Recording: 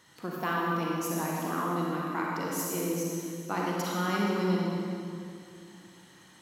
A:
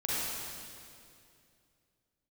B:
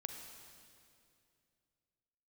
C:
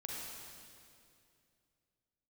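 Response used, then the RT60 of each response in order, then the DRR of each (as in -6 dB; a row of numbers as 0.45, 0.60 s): C; 2.5, 2.5, 2.5 s; -8.5, 4.0, -4.0 dB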